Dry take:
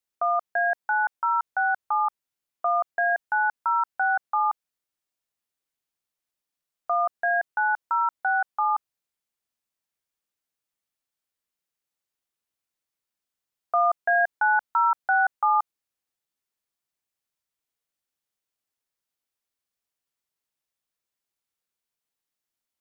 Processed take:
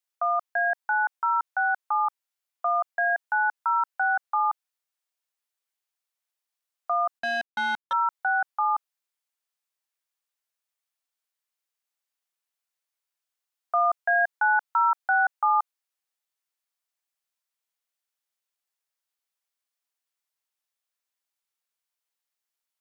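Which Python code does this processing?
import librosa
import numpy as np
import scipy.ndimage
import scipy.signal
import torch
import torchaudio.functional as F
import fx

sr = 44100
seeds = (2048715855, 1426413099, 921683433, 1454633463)

y = scipy.signal.sosfilt(scipy.signal.butter(2, 620.0, 'highpass', fs=sr, output='sos'), x)
y = fx.power_curve(y, sr, exponent=2.0, at=(7.19, 7.93))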